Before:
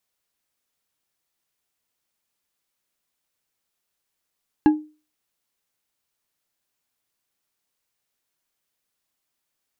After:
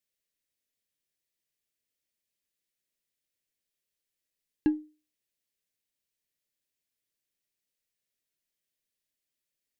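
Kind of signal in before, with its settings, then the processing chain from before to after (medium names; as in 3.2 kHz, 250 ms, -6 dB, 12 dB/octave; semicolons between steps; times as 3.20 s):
glass hit bar, lowest mode 305 Hz, decay 0.33 s, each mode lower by 9.5 dB, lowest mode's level -8 dB
high-order bell 1 kHz -12.5 dB 1.2 oct; feedback comb 640 Hz, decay 0.27 s, mix 60%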